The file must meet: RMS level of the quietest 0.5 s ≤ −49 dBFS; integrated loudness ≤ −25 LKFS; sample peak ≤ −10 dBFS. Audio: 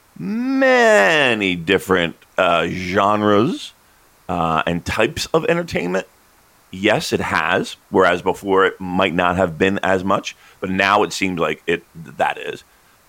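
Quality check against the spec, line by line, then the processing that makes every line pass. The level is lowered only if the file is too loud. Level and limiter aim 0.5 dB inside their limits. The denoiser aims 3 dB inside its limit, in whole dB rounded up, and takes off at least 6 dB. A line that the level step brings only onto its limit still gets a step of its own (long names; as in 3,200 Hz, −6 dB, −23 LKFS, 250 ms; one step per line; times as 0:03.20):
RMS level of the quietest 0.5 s −53 dBFS: in spec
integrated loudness −17.5 LKFS: out of spec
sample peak −3.0 dBFS: out of spec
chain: level −8 dB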